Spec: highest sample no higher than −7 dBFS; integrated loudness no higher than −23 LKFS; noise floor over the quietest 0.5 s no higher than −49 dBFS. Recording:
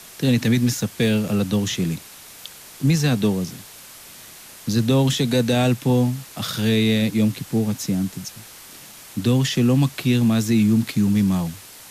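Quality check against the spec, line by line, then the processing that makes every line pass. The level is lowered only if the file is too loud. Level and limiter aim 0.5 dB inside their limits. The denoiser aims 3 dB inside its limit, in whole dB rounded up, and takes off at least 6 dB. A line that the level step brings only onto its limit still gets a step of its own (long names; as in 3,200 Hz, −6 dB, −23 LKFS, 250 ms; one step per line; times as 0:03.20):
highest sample −9.0 dBFS: in spec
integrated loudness −20.5 LKFS: out of spec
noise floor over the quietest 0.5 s −42 dBFS: out of spec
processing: broadband denoise 7 dB, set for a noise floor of −42 dBFS
level −3 dB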